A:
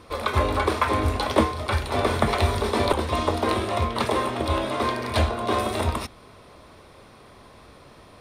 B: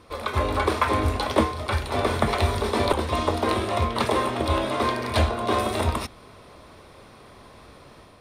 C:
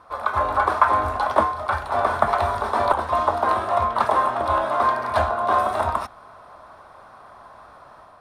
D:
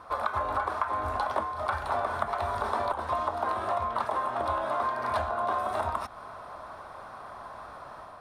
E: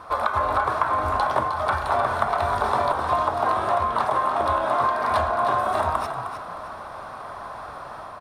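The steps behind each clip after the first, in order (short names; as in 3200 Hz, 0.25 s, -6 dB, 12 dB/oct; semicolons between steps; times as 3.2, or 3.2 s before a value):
AGC gain up to 4.5 dB; gain -3.5 dB
band shelf 1000 Hz +15 dB; gain -8 dB
compressor 10:1, threshold -28 dBFS, peak gain reduction 17.5 dB; gain +2 dB
de-hum 60.52 Hz, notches 36; frequency-shifting echo 0.309 s, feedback 31%, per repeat +45 Hz, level -8.5 dB; gain +7 dB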